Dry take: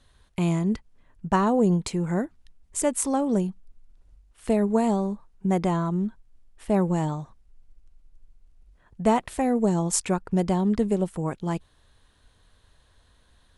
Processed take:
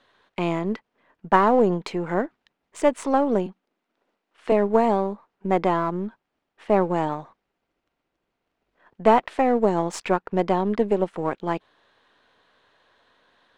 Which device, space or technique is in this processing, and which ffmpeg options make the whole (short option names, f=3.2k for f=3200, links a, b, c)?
crystal radio: -filter_complex "[0:a]asettb=1/sr,asplit=3[a][b][c];[a]atrim=end=3.464[d];[b]atrim=start=3.46:end=4.52,asetpts=PTS-STARTPTS,afade=t=in:d=0.004:c=qsin,afade=t=out:st=1.056:d=0.004:c=qsin,highpass=f=190:w=0.5412,highpass=f=190:w=1.3066[e];[c]atrim=start=4.516[f];[d][e]acrossfade=d=0.004:c1=hsin:c2=qsin[g];[g][f]acrossfade=d=0.004:c1=qsin:c2=hsin,highpass=350,lowpass=2.9k,aeval=exprs='if(lt(val(0),0),0.708*val(0),val(0))':c=same,volume=7.5dB"